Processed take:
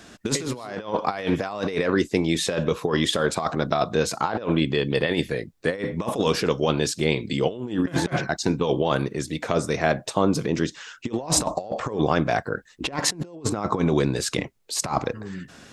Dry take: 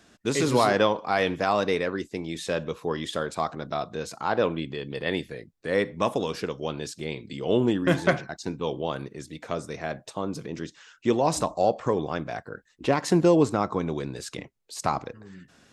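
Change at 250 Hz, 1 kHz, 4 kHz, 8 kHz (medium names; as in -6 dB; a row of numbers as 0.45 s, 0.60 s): +3.0 dB, +0.5 dB, +6.5 dB, +9.5 dB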